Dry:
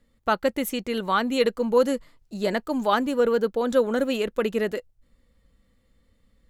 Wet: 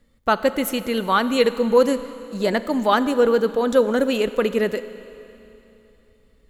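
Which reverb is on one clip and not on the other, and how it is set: Schroeder reverb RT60 3.1 s, combs from 31 ms, DRR 13 dB; gain +4 dB

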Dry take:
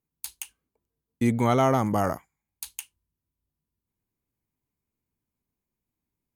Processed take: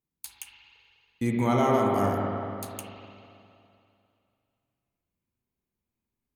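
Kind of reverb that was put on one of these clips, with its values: spring tank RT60 2.6 s, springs 40/50/56 ms, chirp 30 ms, DRR -1.5 dB; gain -4.5 dB

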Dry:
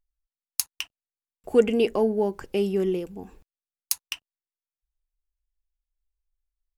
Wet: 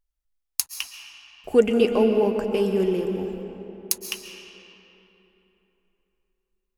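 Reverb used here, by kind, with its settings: digital reverb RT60 3.5 s, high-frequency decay 0.6×, pre-delay 95 ms, DRR 4.5 dB; gain +1.5 dB

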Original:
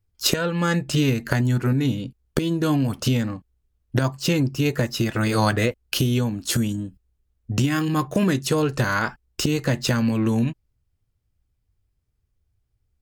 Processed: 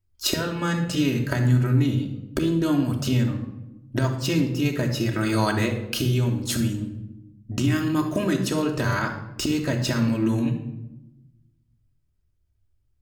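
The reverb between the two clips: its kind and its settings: shoebox room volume 3600 m³, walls furnished, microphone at 2.8 m; gain -4.5 dB

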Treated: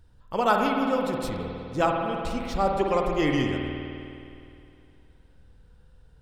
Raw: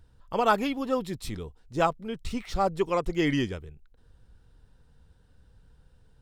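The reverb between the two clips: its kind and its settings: spring tank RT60 2.6 s, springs 51 ms, chirp 40 ms, DRR 1 dB

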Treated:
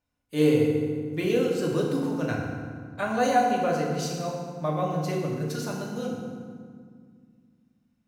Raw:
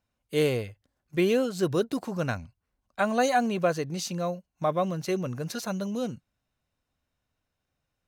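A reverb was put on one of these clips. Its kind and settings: FDN reverb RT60 1.9 s, low-frequency decay 1.6×, high-frequency decay 0.65×, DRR -2.5 dB; gain -4.5 dB

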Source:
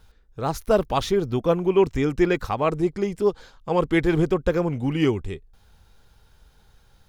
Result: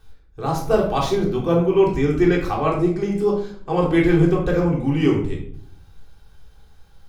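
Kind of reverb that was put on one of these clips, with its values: shoebox room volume 780 m³, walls furnished, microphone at 3.6 m; gain -3 dB

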